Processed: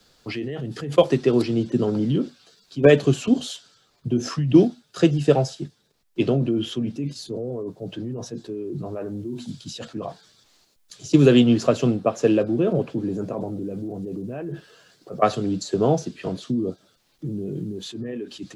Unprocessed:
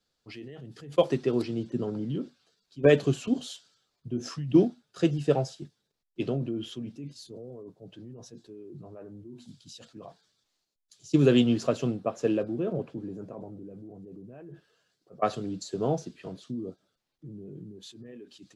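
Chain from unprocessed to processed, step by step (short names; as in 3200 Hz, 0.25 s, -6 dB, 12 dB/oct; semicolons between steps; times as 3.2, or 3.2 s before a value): three-band squash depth 40%; gain +9 dB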